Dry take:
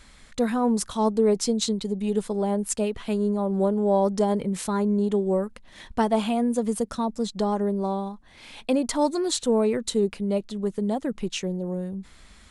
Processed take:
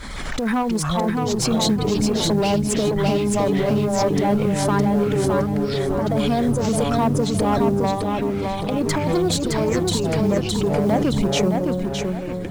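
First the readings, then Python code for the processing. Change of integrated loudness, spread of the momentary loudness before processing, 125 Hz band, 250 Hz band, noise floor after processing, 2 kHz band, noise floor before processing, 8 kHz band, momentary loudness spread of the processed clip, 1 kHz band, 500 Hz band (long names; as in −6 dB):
+4.5 dB, 8 LU, +11.0 dB, +4.5 dB, −26 dBFS, +10.0 dB, −51 dBFS, +5.0 dB, 4 LU, +5.5 dB, +3.5 dB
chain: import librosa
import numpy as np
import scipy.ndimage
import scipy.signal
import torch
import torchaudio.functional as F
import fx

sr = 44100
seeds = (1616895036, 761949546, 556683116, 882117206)

y = fx.dereverb_blind(x, sr, rt60_s=2.0)
y = fx.high_shelf(y, sr, hz=4200.0, db=-9.0)
y = fx.notch(y, sr, hz=2700.0, q=6.4)
y = fx.over_compress(y, sr, threshold_db=-26.0, ratio=-0.5)
y = fx.tube_stage(y, sr, drive_db=24.0, bias=0.35)
y = fx.quant_float(y, sr, bits=4)
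y = fx.echo_pitch(y, sr, ms=160, semitones=-6, count=3, db_per_echo=-6.0)
y = fx.echo_feedback(y, sr, ms=614, feedback_pct=33, wet_db=-4.0)
y = fx.pre_swell(y, sr, db_per_s=30.0)
y = y * librosa.db_to_amplitude(8.5)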